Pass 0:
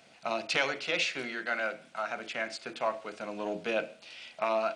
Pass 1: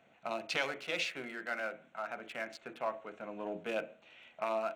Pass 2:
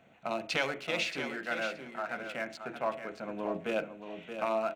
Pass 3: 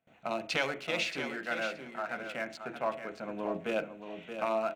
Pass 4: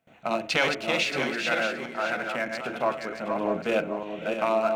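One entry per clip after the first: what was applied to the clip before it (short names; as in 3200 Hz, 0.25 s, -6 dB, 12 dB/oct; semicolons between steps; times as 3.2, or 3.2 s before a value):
Wiener smoothing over 9 samples; gain -5 dB
low shelf 250 Hz +7.5 dB; feedback echo 0.625 s, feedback 16%, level -8.5 dB; gain +2.5 dB
gate with hold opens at -51 dBFS
reverse delay 0.31 s, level -4.5 dB; gain +6.5 dB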